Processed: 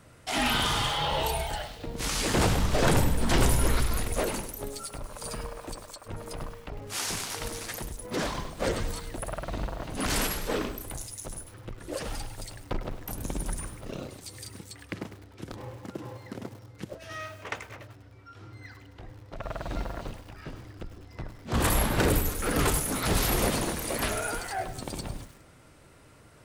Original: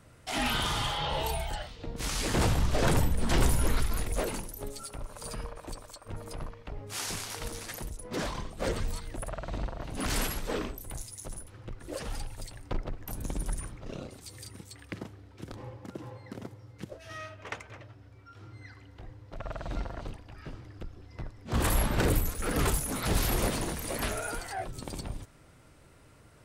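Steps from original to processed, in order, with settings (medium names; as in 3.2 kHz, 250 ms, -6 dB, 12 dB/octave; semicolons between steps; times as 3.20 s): bass shelf 110 Hz -4.5 dB; bit-crushed delay 101 ms, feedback 55%, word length 8-bit, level -11.5 dB; trim +3.5 dB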